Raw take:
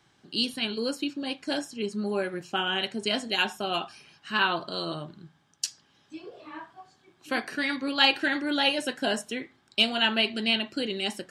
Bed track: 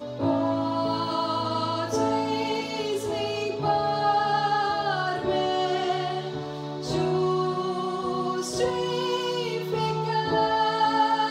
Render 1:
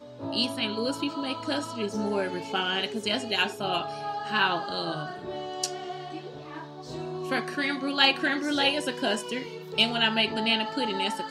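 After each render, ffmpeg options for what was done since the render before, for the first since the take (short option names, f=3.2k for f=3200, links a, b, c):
-filter_complex "[1:a]volume=-10.5dB[a];[0:a][a]amix=inputs=2:normalize=0"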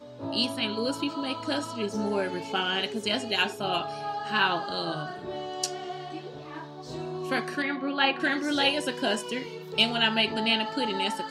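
-filter_complex "[0:a]asettb=1/sr,asplit=3[a][b][c];[a]atrim=end=7.624[d];[b]atrim=start=7.62:end=8.2,asetpts=PTS-STARTPTS,afade=t=in:d=0.004:c=qsin,afade=t=out:st=0.576:d=0.004:c=qsin,highpass=160,lowpass=2.4k[e];[c]atrim=start=8.196[f];[d][e]acrossfade=d=0.004:c1=hsin:c2=qsin[g];[g][f]acrossfade=d=0.004:c1=qsin:c2=hsin"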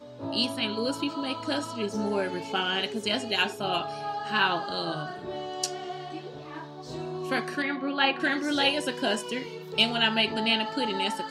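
-af anull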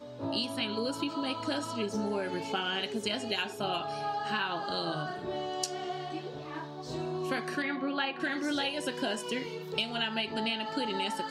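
-af "acompressor=threshold=-28dB:ratio=12"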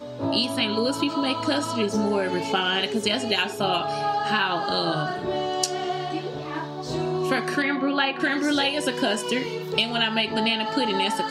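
-af "volume=9dB"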